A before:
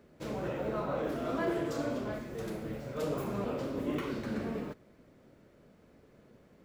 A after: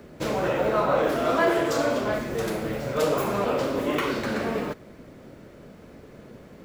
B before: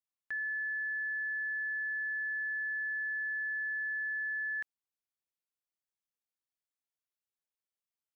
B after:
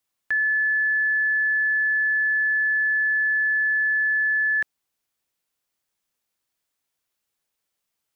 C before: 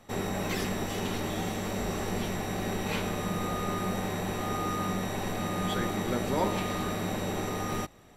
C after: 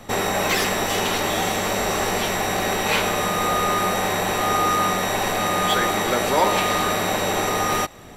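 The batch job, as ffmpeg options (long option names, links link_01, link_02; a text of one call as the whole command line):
ffmpeg -i in.wav -filter_complex "[0:a]apsyclip=22dB,acrossover=split=460|3000[link_01][link_02][link_03];[link_01]acompressor=threshold=-22dB:ratio=6[link_04];[link_03]volume=12.5dB,asoftclip=hard,volume=-12.5dB[link_05];[link_04][link_02][link_05]amix=inputs=3:normalize=0,volume=-8dB" out.wav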